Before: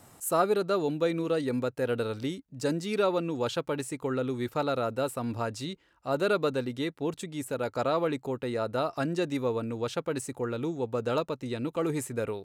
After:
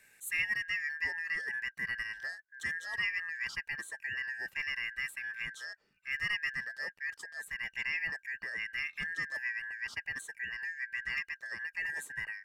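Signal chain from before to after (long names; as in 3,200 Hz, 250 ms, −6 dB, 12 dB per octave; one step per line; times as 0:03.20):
band-splitting scrambler in four parts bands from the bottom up 2143
level −8 dB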